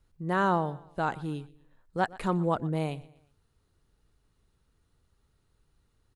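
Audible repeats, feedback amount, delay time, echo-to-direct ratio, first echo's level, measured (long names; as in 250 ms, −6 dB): 2, 42%, 120 ms, −19.5 dB, −20.5 dB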